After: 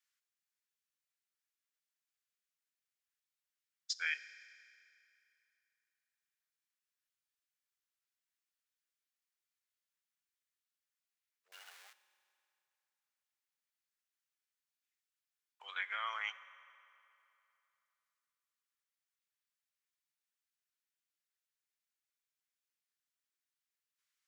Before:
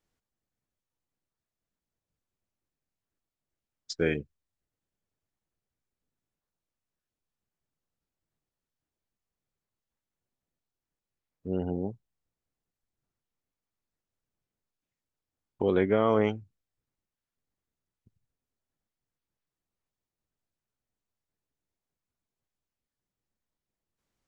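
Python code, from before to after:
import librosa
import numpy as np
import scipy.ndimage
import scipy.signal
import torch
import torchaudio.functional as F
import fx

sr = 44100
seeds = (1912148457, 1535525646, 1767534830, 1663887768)

y = fx.zero_step(x, sr, step_db=-42.0, at=(11.52, 11.93))
y = scipy.signal.sosfilt(scipy.signal.cheby2(4, 70, 310.0, 'highpass', fs=sr, output='sos'), y)
y = fx.rev_fdn(y, sr, rt60_s=3.0, lf_ratio=1.0, hf_ratio=0.8, size_ms=17.0, drr_db=13.0)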